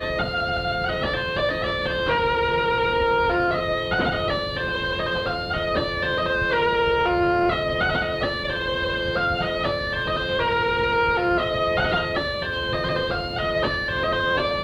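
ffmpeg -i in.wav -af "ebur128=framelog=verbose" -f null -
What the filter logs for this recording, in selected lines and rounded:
Integrated loudness:
  I:         -22.7 LUFS
  Threshold: -32.7 LUFS
Loudness range:
  LRA:         1.3 LU
  Threshold: -42.6 LUFS
  LRA low:   -23.3 LUFS
  LRA high:  -22.0 LUFS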